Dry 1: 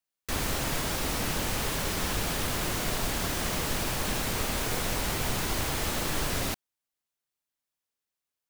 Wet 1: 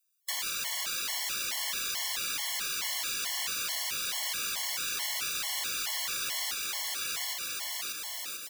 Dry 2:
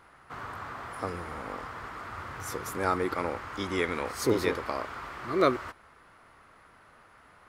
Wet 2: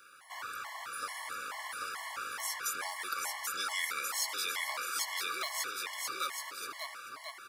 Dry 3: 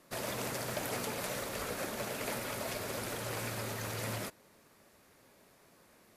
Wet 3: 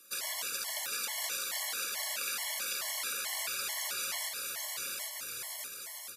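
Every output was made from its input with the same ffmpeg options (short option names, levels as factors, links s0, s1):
-filter_complex "[0:a]asplit=2[s0][s1];[s1]volume=20,asoftclip=hard,volume=0.0501,volume=0.473[s2];[s0][s2]amix=inputs=2:normalize=0,aecho=1:1:790|1382|1827|2160|2410:0.631|0.398|0.251|0.158|0.1,apsyclip=4.47,aderivative,acrossover=split=720[s3][s4];[s3]acompressor=threshold=0.00251:ratio=6[s5];[s5][s4]amix=inputs=2:normalize=0,highshelf=f=6200:g=-4.5,asoftclip=type=tanh:threshold=0.2,acrossover=split=360|6100[s6][s7][s8];[s6]acompressor=threshold=0.002:ratio=4[s9];[s7]acompressor=threshold=0.0316:ratio=4[s10];[s8]acompressor=threshold=0.0158:ratio=4[s11];[s9][s10][s11]amix=inputs=3:normalize=0,afftfilt=real='re*gt(sin(2*PI*2.3*pts/sr)*(1-2*mod(floor(b*sr/1024/570),2)),0)':imag='im*gt(sin(2*PI*2.3*pts/sr)*(1-2*mod(floor(b*sr/1024/570),2)),0)':win_size=1024:overlap=0.75"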